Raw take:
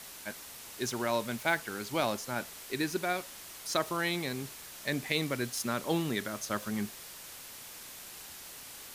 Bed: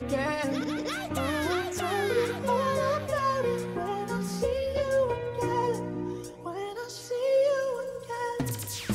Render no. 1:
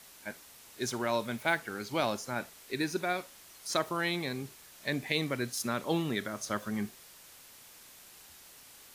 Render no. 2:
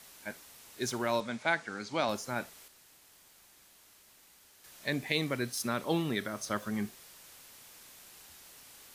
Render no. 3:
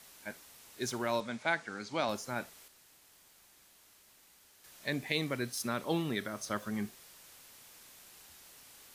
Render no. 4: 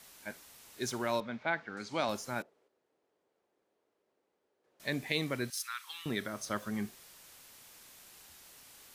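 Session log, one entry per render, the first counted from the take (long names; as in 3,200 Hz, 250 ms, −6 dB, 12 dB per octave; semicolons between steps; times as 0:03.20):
noise reduction from a noise print 7 dB
0:01.20–0:02.09: loudspeaker in its box 110–7,900 Hz, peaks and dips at 130 Hz −5 dB, 380 Hz −6 dB, 2,900 Hz −3 dB; 0:02.68–0:04.64: fill with room tone; 0:05.39–0:06.56: notch filter 6,900 Hz
level −2 dB
0:01.20–0:01.77: high-frequency loss of the air 240 metres; 0:02.42–0:04.80: resonant band-pass 440 Hz, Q 2.4; 0:05.50–0:06.06: inverse Chebyshev high-pass filter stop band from 640 Hz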